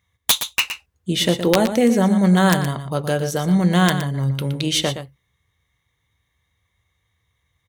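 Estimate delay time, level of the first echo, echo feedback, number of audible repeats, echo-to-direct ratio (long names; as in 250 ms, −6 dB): 118 ms, −10.0 dB, repeats not evenly spaced, 1, −10.0 dB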